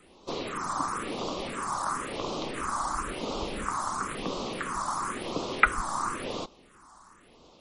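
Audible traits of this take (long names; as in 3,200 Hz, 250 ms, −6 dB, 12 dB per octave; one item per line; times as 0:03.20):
phaser sweep stages 4, 0.97 Hz, lowest notch 430–1,700 Hz
MP3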